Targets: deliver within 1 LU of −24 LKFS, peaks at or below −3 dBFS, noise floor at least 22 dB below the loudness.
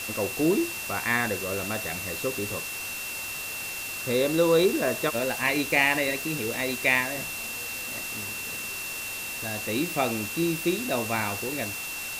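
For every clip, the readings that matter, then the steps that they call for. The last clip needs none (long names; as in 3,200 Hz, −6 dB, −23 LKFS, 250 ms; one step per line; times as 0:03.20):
interfering tone 2,700 Hz; level of the tone −35 dBFS; background noise floor −35 dBFS; target noise floor −49 dBFS; integrated loudness −27.0 LKFS; sample peak −7.5 dBFS; target loudness −24.0 LKFS
→ notch filter 2,700 Hz, Q 30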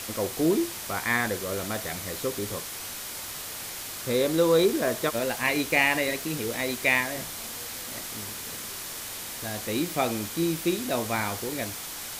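interfering tone none found; background noise floor −37 dBFS; target noise floor −50 dBFS
→ broadband denoise 13 dB, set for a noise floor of −37 dBFS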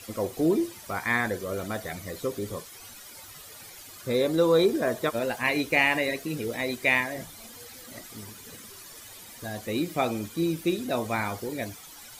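background noise floor −46 dBFS; target noise floor −50 dBFS
→ broadband denoise 6 dB, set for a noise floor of −46 dBFS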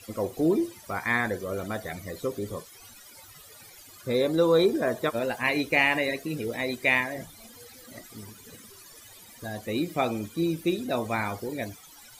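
background noise floor −50 dBFS; integrated loudness −27.5 LKFS; sample peak −7.5 dBFS; target loudness −24.0 LKFS
→ level +3.5 dB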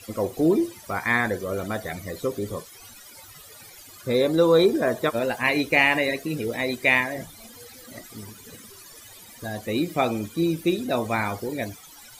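integrated loudness −24.0 LKFS; sample peak −4.0 dBFS; background noise floor −47 dBFS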